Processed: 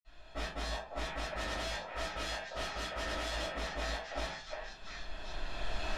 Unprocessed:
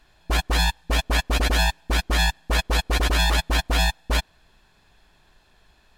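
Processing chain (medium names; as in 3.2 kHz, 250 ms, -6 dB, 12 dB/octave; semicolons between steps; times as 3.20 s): recorder AGC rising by 14 dB/s; 1.23–3.46 s: bass shelf 68 Hz -12 dB; compression 10:1, threshold -28 dBFS, peak gain reduction 12 dB; wavefolder -32 dBFS; distance through air 75 m; repeats whose band climbs or falls 354 ms, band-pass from 690 Hz, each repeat 1.4 oct, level 0 dB; reverberation RT60 0.45 s, pre-delay 46 ms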